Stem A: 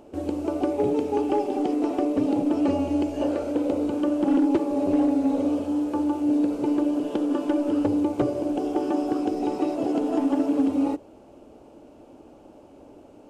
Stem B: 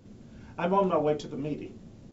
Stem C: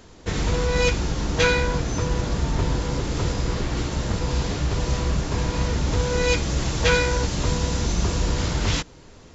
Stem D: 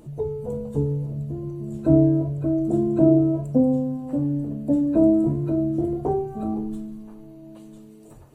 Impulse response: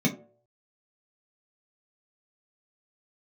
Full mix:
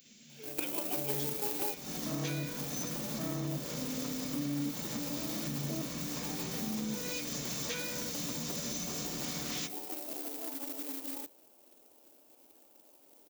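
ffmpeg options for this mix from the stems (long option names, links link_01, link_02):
-filter_complex "[0:a]acrusher=bits=3:mode=log:mix=0:aa=0.000001,adelay=300,volume=0dB[link_01];[1:a]highshelf=frequency=1600:width_type=q:width=1.5:gain=14,volume=-13.5dB,asplit=3[link_02][link_03][link_04];[link_03]volume=-18.5dB[link_05];[2:a]acompressor=threshold=-26dB:ratio=6,aeval=exprs='sgn(val(0))*max(abs(val(0))-0.00447,0)':channel_layout=same,adelay=850,volume=-7dB,asplit=2[link_06][link_07];[link_07]volume=-12.5dB[link_08];[3:a]asoftclip=type=tanh:threshold=-16.5dB,aeval=exprs='val(0)*pow(10,-30*if(lt(mod(-0.89*n/s,1),2*abs(-0.89)/1000),1-mod(-0.89*n/s,1)/(2*abs(-0.89)/1000),(mod(-0.89*n/s,1)-2*abs(-0.89)/1000)/(1-2*abs(-0.89)/1000))/20)':channel_layout=same,adelay=200,volume=-6dB,asplit=2[link_09][link_10];[link_10]volume=-9dB[link_11];[link_04]apad=whole_len=599376[link_12];[link_01][link_12]sidechaingate=range=-15dB:threshold=-55dB:ratio=16:detection=peak[link_13];[4:a]atrim=start_sample=2205[link_14];[link_05][link_08][link_11]amix=inputs=3:normalize=0[link_15];[link_15][link_14]afir=irnorm=-1:irlink=0[link_16];[link_13][link_02][link_06][link_09][link_16]amix=inputs=5:normalize=0,aemphasis=mode=production:type=riaa,acompressor=threshold=-35dB:ratio=3"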